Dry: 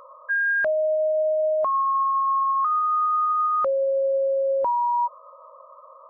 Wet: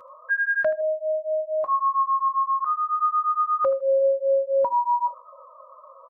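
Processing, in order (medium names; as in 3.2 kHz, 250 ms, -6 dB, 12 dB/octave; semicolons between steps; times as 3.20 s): 0.81–1.69 s: feedback comb 53 Hz, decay 0.23 s, harmonics all, mix 60%; 2.28–2.97 s: low-pass 1.7 kHz -> 1.4 kHz 12 dB/octave; on a send: feedback delay 79 ms, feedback 15%, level -15 dB; on the sum: cancelling through-zero flanger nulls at 0.5 Hz, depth 6.9 ms; trim +2.5 dB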